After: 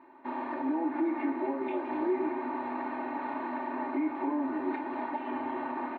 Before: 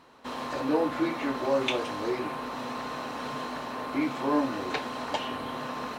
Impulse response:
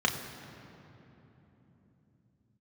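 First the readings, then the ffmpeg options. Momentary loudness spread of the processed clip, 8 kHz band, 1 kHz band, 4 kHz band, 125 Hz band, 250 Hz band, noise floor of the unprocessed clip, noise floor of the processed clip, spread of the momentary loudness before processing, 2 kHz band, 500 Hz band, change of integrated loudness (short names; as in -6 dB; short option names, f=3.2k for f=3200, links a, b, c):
5 LU, under -30 dB, -1.5 dB, under -20 dB, under -15 dB, 0.0 dB, -38 dBFS, -40 dBFS, 8 LU, -5.5 dB, -4.5 dB, -2.5 dB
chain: -filter_complex "[0:a]equalizer=f=230:w=5.8:g=-10,aecho=1:1:3.3:0.86,alimiter=limit=-23dB:level=0:latency=1:release=209,highpass=180,equalizer=f=250:t=q:w=4:g=8,equalizer=f=370:t=q:w=4:g=7,equalizer=f=540:t=q:w=4:g=-10,equalizer=f=840:t=q:w=4:g=4,equalizer=f=1.3k:t=q:w=4:g=-10,lowpass=f=2.2k:w=0.5412,lowpass=f=2.2k:w=1.3066,aecho=1:1:248:0.316,asplit=2[a][b];[1:a]atrim=start_sample=2205,asetrate=48510,aresample=44100,lowshelf=f=400:g=-11[c];[b][c]afir=irnorm=-1:irlink=0,volume=-13.5dB[d];[a][d]amix=inputs=2:normalize=0,volume=-3dB"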